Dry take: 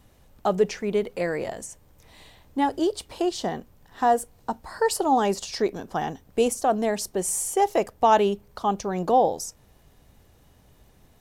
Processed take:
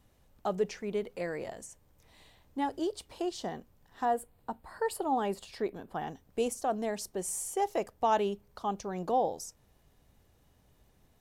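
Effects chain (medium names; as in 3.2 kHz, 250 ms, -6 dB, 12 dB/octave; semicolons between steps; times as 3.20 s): 4.05–6.07 s: peaking EQ 5.9 kHz -14.5 dB 0.56 oct; trim -9 dB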